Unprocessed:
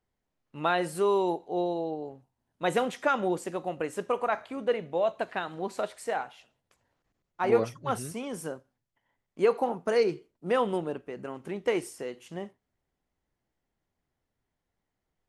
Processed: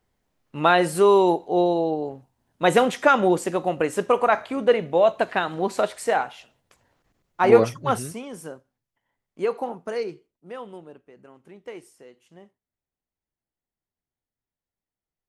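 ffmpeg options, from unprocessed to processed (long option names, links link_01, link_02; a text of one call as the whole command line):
ffmpeg -i in.wav -af "volume=9dB,afade=type=out:start_time=7.78:duration=0.47:silence=0.316228,afade=type=out:start_time=9.65:duration=0.83:silence=0.316228" out.wav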